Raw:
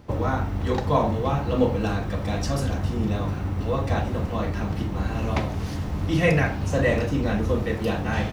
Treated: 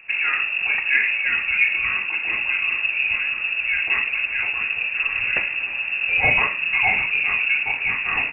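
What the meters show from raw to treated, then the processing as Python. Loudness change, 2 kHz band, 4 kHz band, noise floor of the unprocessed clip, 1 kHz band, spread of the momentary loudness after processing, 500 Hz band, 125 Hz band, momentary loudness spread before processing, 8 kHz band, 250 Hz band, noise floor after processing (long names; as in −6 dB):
+5.5 dB, +15.5 dB, +9.5 dB, −30 dBFS, −3.0 dB, 4 LU, −14.5 dB, −20.0 dB, 6 LU, below −35 dB, below −15 dB, −29 dBFS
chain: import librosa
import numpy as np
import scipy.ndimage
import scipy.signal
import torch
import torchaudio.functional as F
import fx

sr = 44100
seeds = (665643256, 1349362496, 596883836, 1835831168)

y = fx.freq_invert(x, sr, carrier_hz=2700)
y = F.gain(torch.from_numpy(y), 1.5).numpy()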